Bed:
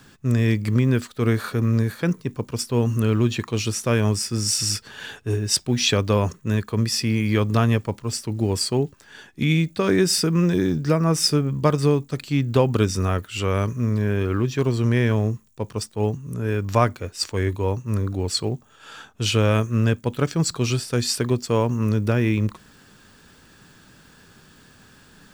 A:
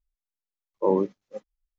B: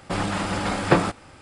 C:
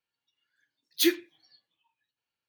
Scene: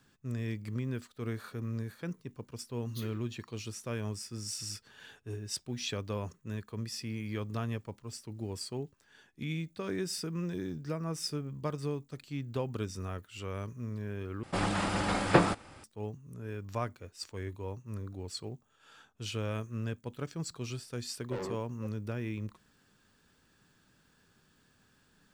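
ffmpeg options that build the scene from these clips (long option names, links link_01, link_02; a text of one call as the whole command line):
ffmpeg -i bed.wav -i cue0.wav -i cue1.wav -i cue2.wav -filter_complex "[0:a]volume=-16.5dB[link_01];[3:a]acompressor=threshold=-34dB:ratio=6:attack=3.2:release=140:knee=1:detection=peak[link_02];[1:a]asoftclip=type=tanh:threshold=-26.5dB[link_03];[link_01]asplit=2[link_04][link_05];[link_04]atrim=end=14.434[link_06];[2:a]atrim=end=1.41,asetpts=PTS-STARTPTS,volume=-5dB[link_07];[link_05]atrim=start=15.836[link_08];[link_02]atrim=end=2.48,asetpts=PTS-STARTPTS,volume=-9.5dB,afade=type=in:duration=0.004:curve=hsin,afade=type=out:start_time=2.476:duration=0.004:curve=hsin,adelay=1970[link_09];[link_03]atrim=end=1.78,asetpts=PTS-STARTPTS,volume=-8.5dB,afade=type=in:duration=0.004:curve=hsin,afade=type=out:start_time=1.776:duration=0.004:curve=hsin,adelay=20490[link_10];[link_06][link_07]acrossfade=duration=0.004:curve1=hsin:curve2=hsin[link_11];[link_11][link_08]acrossfade=duration=0.004:curve1=hsin:curve2=hsin[link_12];[link_12][link_09][link_10]amix=inputs=3:normalize=0" out.wav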